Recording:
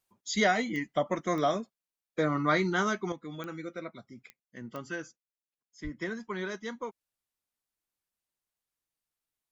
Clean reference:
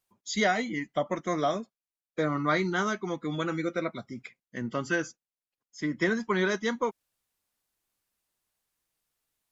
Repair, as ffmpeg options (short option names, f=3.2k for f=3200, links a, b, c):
-filter_complex "[0:a]adeclick=t=4,asplit=3[a][b][c];[a]afade=t=out:st=5.83:d=0.02[d];[b]highpass=f=140:w=0.5412,highpass=f=140:w=1.3066,afade=t=in:st=5.83:d=0.02,afade=t=out:st=5.95:d=0.02[e];[c]afade=t=in:st=5.95:d=0.02[f];[d][e][f]amix=inputs=3:normalize=0,asetnsamples=n=441:p=0,asendcmd='3.12 volume volume 9dB',volume=0dB"